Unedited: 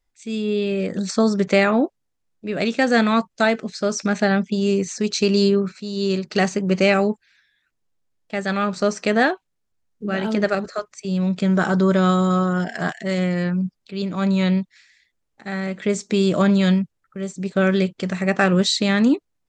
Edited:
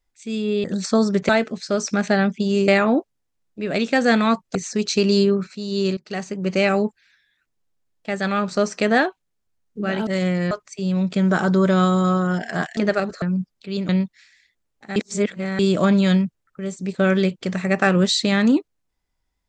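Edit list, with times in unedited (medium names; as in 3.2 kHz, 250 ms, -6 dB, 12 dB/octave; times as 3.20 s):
0.64–0.89 s: delete
3.41–4.80 s: move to 1.54 s
6.22–7.11 s: fade in, from -15.5 dB
10.32–10.77 s: swap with 13.03–13.47 s
14.14–14.46 s: delete
15.53–16.16 s: reverse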